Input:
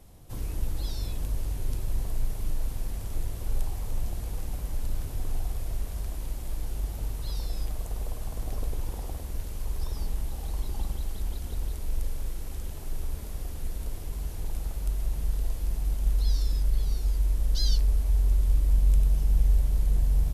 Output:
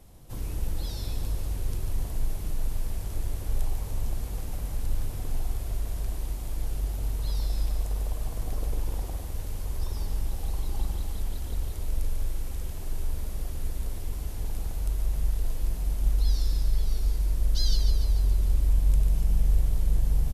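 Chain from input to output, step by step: feedback delay 145 ms, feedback 56%, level -7.5 dB

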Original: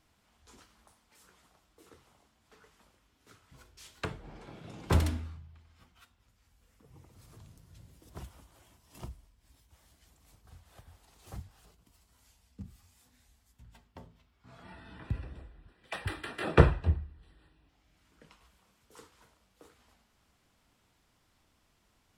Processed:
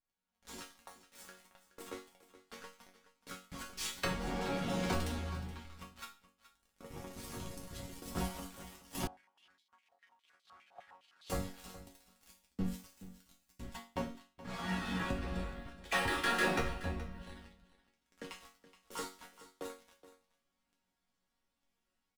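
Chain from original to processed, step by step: tracing distortion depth 0.029 ms; compression 10:1, threshold -37 dBFS, peak gain reduction 24.5 dB; waveshaping leveller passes 5; level rider gain up to 9.5 dB; chord resonator F#3 major, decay 0.34 s; delay 423 ms -16 dB; 9.07–11.30 s: step-sequenced band-pass 9.8 Hz 760–3800 Hz; trim +3.5 dB

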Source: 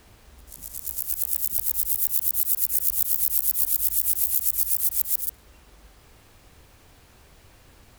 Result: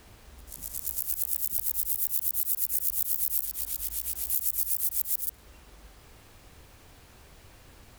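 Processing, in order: 3.45–4.30 s: treble shelf 6.9 kHz -10.5 dB; compression 2:1, threshold -26 dBFS, peak gain reduction 6 dB

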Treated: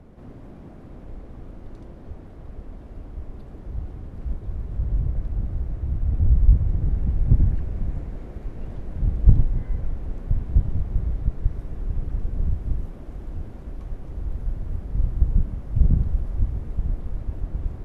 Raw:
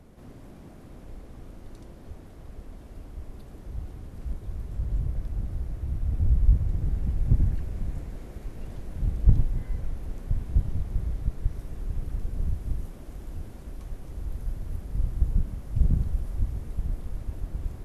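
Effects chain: low-pass 1.6 kHz 6 dB/octave; trim +4.5 dB

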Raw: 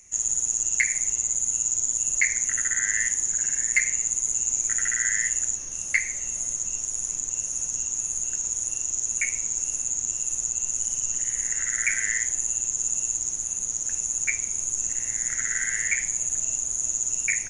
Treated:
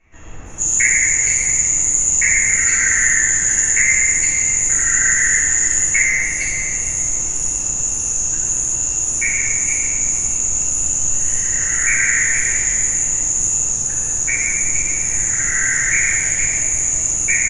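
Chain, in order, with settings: bands offset in time lows, highs 460 ms, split 2.8 kHz; reverberation RT60 2.6 s, pre-delay 3 ms, DRR -13.5 dB

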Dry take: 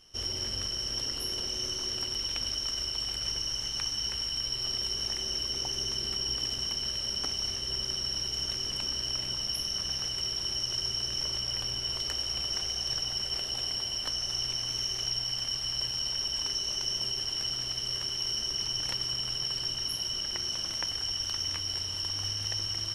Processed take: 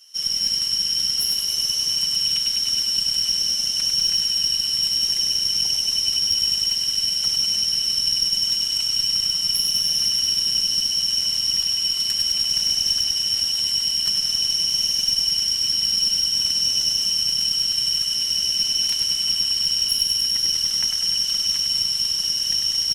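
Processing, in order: differentiator; comb 5.4 ms, depth 71%; thinning echo 99 ms, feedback 79%, level -5 dB; Chebyshev shaper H 4 -24 dB, 5 -30 dB, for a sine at -17 dBFS; trim +9 dB

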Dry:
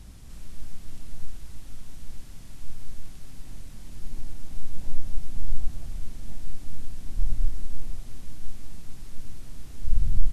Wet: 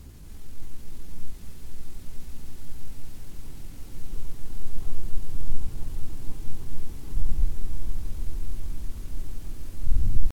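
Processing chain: pitch shift +4.5 st; echo with a slow build-up 158 ms, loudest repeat 5, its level -11 dB

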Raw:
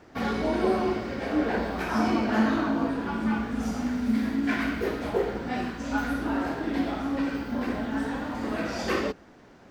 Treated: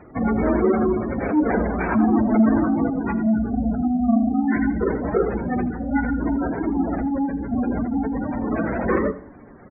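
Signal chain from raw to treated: square wave that keeps the level; resonant high shelf 3.3 kHz -12 dB, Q 1.5; spectral gate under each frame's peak -15 dB strong; delay 81 ms -16.5 dB; on a send at -19 dB: reverberation RT60 1.2 s, pre-delay 8 ms; on the sum: trim +3 dB

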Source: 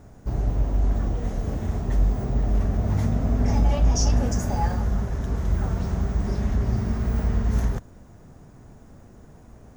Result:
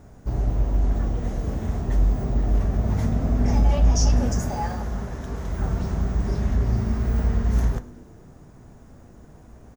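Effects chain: 4.49–5.59 s: bass shelf 170 Hz -8 dB; frequency-shifting echo 103 ms, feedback 62%, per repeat -100 Hz, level -22 dB; on a send at -11.5 dB: reverberation RT60 0.45 s, pre-delay 7 ms

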